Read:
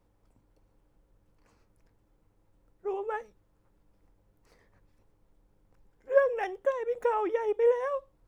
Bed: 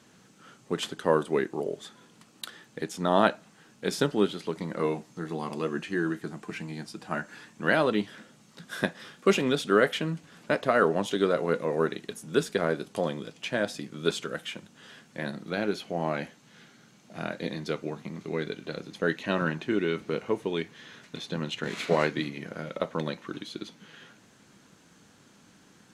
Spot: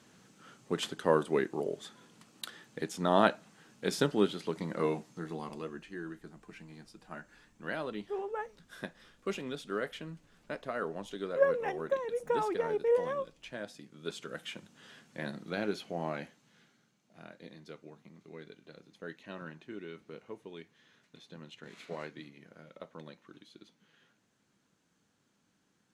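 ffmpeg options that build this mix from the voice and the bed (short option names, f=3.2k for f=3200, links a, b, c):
-filter_complex "[0:a]adelay=5250,volume=-3.5dB[a];[1:a]volume=5.5dB,afade=t=out:st=4.98:d=0.82:silence=0.298538,afade=t=in:st=14.05:d=0.47:silence=0.375837,afade=t=out:st=15.79:d=1.17:silence=0.251189[b];[a][b]amix=inputs=2:normalize=0"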